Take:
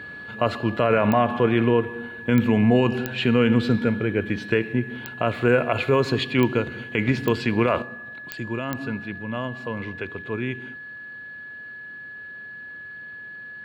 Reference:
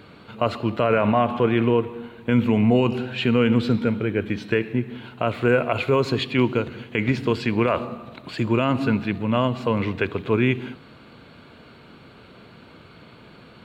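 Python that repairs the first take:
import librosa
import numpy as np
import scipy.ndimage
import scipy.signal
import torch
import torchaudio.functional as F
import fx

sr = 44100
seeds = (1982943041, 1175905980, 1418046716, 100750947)

y = fx.fix_declick_ar(x, sr, threshold=10.0)
y = fx.notch(y, sr, hz=1700.0, q=30.0)
y = fx.fix_level(y, sr, at_s=7.82, step_db=8.5)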